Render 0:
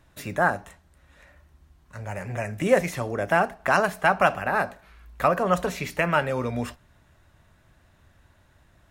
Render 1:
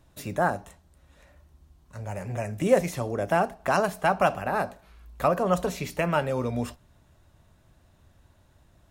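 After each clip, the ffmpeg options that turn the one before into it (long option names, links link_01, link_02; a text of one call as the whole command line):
ffmpeg -i in.wav -af "equalizer=frequency=1800:width_type=o:width=1.3:gain=-7.5" out.wav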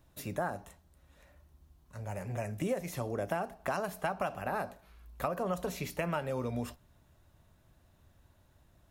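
ffmpeg -i in.wav -af "aexciter=amount=2.1:drive=2.6:freq=11000,acompressor=threshold=-24dB:ratio=12,volume=-5dB" out.wav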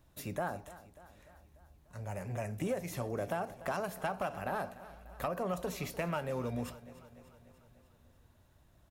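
ffmpeg -i in.wav -filter_complex "[0:a]asplit=2[link_01][link_02];[link_02]aeval=exprs='0.126*sin(PI/2*2*val(0)/0.126)':channel_layout=same,volume=-7dB[link_03];[link_01][link_03]amix=inputs=2:normalize=0,aecho=1:1:295|590|885|1180|1475|1770:0.141|0.0833|0.0492|0.029|0.0171|0.0101,volume=-8.5dB" out.wav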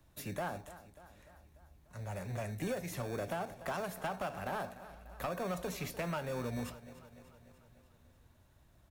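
ffmpeg -i in.wav -filter_complex "[0:a]asoftclip=type=tanh:threshold=-29dB,acrossover=split=120|440|3700[link_01][link_02][link_03][link_04];[link_02]acrusher=samples=22:mix=1:aa=0.000001[link_05];[link_01][link_05][link_03][link_04]amix=inputs=4:normalize=0" out.wav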